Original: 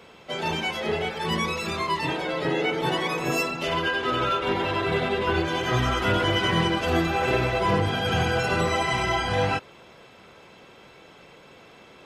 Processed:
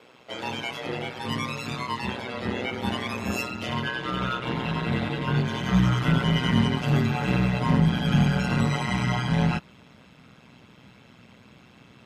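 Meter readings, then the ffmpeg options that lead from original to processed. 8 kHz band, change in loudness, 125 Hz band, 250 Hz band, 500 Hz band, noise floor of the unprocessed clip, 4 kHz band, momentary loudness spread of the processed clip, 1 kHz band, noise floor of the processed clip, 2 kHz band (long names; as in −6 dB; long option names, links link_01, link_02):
−4.0 dB, −1.0 dB, +5.0 dB, +4.0 dB, −7.5 dB, −50 dBFS, −4.0 dB, 9 LU, −5.5 dB, −53 dBFS, −4.5 dB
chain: -af "asubboost=boost=9:cutoff=140,aeval=exprs='val(0)*sin(2*PI*62*n/s)':channel_layout=same,highpass=110,volume=-1dB"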